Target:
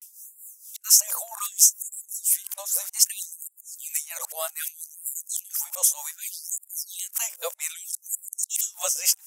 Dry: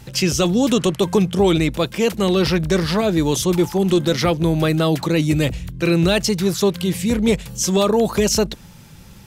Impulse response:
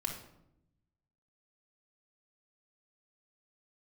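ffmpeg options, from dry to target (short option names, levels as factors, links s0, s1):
-af "areverse,highshelf=f=5600:g=-2.5,aexciter=amount=12.1:drive=7.1:freq=6100,tremolo=f=4.3:d=0.78,afftfilt=real='re*gte(b*sr/1024,460*pow(7100/460,0.5+0.5*sin(2*PI*0.64*pts/sr)))':imag='im*gte(b*sr/1024,460*pow(7100/460,0.5+0.5*sin(2*PI*0.64*pts/sr)))':win_size=1024:overlap=0.75,volume=0.355"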